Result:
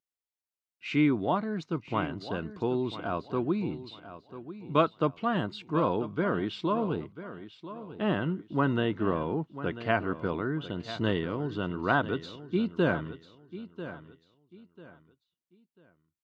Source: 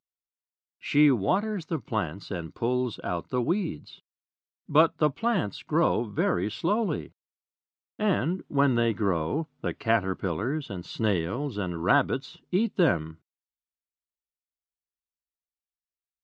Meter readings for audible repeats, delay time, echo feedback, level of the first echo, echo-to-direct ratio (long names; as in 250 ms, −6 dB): 2, 993 ms, 28%, −13.5 dB, −13.0 dB